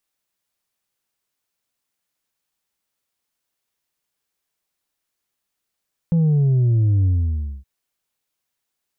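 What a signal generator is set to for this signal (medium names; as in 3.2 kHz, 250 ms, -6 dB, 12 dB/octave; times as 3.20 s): sub drop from 170 Hz, over 1.52 s, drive 3 dB, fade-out 0.59 s, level -14 dB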